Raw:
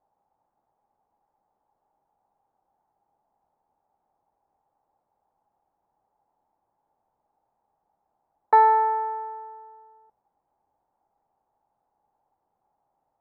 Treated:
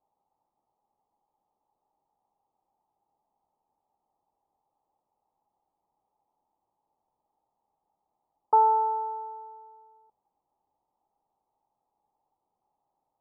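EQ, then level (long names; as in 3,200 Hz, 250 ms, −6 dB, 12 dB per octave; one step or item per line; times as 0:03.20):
Chebyshev low-pass with heavy ripple 1,300 Hz, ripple 3 dB
−3.5 dB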